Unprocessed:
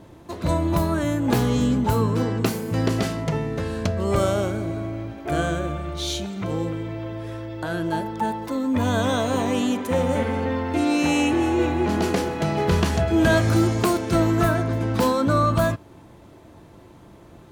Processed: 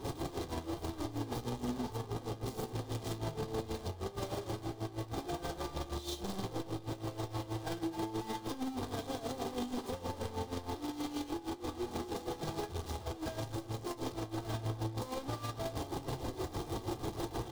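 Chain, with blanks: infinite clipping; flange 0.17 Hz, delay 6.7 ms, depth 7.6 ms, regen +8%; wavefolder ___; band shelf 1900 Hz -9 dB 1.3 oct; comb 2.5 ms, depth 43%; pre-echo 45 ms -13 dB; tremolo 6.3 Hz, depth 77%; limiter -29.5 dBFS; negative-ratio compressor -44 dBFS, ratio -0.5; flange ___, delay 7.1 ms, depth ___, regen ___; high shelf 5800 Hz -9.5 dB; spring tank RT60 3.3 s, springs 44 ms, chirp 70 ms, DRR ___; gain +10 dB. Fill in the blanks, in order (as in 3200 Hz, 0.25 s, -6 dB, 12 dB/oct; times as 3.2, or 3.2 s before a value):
-31.5 dBFS, 0.44 Hz, 2.2 ms, +73%, 19.5 dB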